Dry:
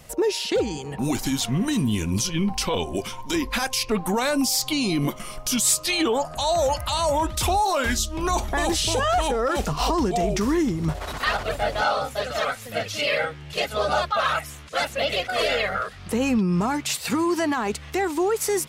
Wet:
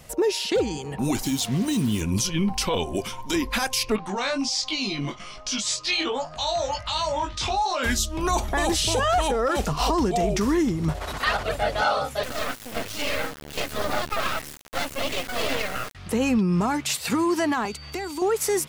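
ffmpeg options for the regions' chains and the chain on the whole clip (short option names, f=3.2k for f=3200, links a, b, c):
-filter_complex "[0:a]asettb=1/sr,asplit=3[a][b][c];[a]atrim=end=1.234[d];[b]atrim=start=1.23:end=2.01,asetpts=PTS-STARTPTS,afade=t=in:d=0.004:c=qsin,afade=t=out:st=0.776:d=0.004:c=qsin,highpass=f=73:p=1,equalizer=f=1.5k:t=o:w=0.96:g=-8.5,acrusher=bits=5:mix=0:aa=0.5[e];[c]atrim=start=2.006[f];[d][e]acrossfade=d=0.004:c1=hsin:c2=qsin[g];[g][f]acrossfade=d=0.004:c1=qsin:c2=hsin,asettb=1/sr,asplit=3[h][i][j];[h]atrim=end=3.964[k];[i]atrim=start=3.96:end=7.83,asetpts=PTS-STARTPTS,afade=t=in:d=0.004:c=qsin,afade=t=out:st=3.866:d=0.004:c=qsin,lowpass=f=6k:w=0.5412,lowpass=f=6k:w=1.3066,tiltshelf=f=1.1k:g=-4,flanger=delay=19:depth=2.9:speed=1.3[l];[j]atrim=start=7.826[m];[k][l]acrossfade=d=0.004:c1=hsin:c2=qsin[n];[n][m]acrossfade=d=0.004:c1=qsin:c2=hsin,asettb=1/sr,asplit=3[o][p][q];[o]atrim=end=12.234[r];[p]atrim=start=12.23:end=15.95,asetpts=PTS-STARTPTS,afade=t=in:d=0.004:c=qsin,afade=t=out:st=3.716:d=0.004:c=qsin,equalizer=f=270:t=o:w=0.34:g=14.5,acrusher=bits=3:dc=4:mix=0:aa=0.000001[s];[q]atrim=start=15.946[t];[r][s]acrossfade=d=0.004:c1=hsin:c2=qsin[u];[u][t]acrossfade=d=0.004:c1=qsin:c2=hsin,asettb=1/sr,asplit=3[v][w][x];[v]atrim=end=17.654[y];[w]atrim=start=17.65:end=18.22,asetpts=PTS-STARTPTS,afade=t=in:d=0.004:c=qsin,afade=t=out:st=0.566:d=0.004:c=qsin,bandreject=f=1.8k:w=8.5,acrossover=split=210|1100|2400[z][aa][ab][ac];[z]acompressor=threshold=-40dB:ratio=3[ad];[aa]acompressor=threshold=-35dB:ratio=3[ae];[ab]acompressor=threshold=-42dB:ratio=3[af];[ac]acompressor=threshold=-39dB:ratio=3[ag];[ad][ae][af][ag]amix=inputs=4:normalize=0,aeval=exprs='val(0)+0.00708*sin(2*PI*4600*n/s)':c=same[ah];[x]atrim=start=18.216[ai];[y][ah]acrossfade=d=0.004:c1=hsin:c2=qsin[aj];[aj][ai]acrossfade=d=0.004:c1=qsin:c2=hsin"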